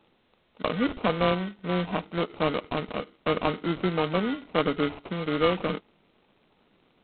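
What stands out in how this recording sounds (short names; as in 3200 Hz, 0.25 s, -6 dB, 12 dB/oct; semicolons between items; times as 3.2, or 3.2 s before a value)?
aliases and images of a low sample rate 1700 Hz, jitter 0%; G.726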